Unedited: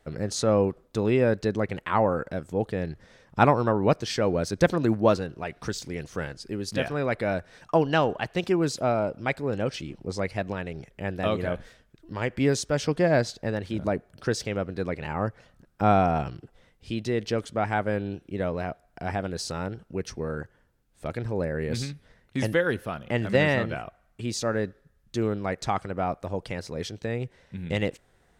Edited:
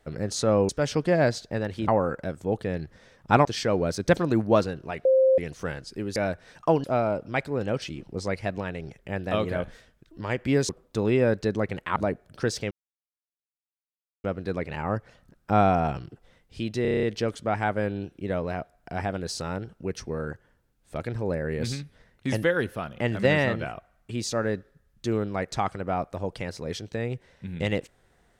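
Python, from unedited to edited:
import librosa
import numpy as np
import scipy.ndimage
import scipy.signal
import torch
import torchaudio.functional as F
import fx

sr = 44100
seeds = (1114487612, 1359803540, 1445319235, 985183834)

y = fx.edit(x, sr, fx.swap(start_s=0.69, length_s=1.27, other_s=12.61, other_length_s=1.19),
    fx.cut(start_s=3.53, length_s=0.45),
    fx.bleep(start_s=5.58, length_s=0.33, hz=526.0, db=-15.5),
    fx.cut(start_s=6.69, length_s=0.53),
    fx.cut(start_s=7.9, length_s=0.86),
    fx.insert_silence(at_s=14.55, length_s=1.53),
    fx.stutter(start_s=17.13, slice_s=0.03, count=8), tone=tone)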